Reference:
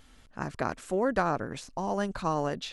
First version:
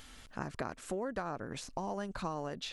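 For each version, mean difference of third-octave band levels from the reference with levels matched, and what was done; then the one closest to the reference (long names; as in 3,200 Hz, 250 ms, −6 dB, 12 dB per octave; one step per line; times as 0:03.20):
4.5 dB: downward compressor 5 to 1, threshold −36 dBFS, peak gain reduction 13.5 dB
one half of a high-frequency compander encoder only
level +1 dB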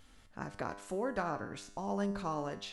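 3.0 dB: in parallel at +0.5 dB: downward compressor, threshold −38 dBFS, peak gain reduction 15.5 dB
on the sum: tuned comb filter 100 Hz, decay 0.73 s, harmonics all, mix 70%
level −1.5 dB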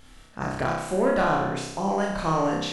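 6.0 dB: soft clipping −20 dBFS, distortion −16 dB
flutter between parallel walls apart 5.3 metres, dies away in 0.9 s
level +3.5 dB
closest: second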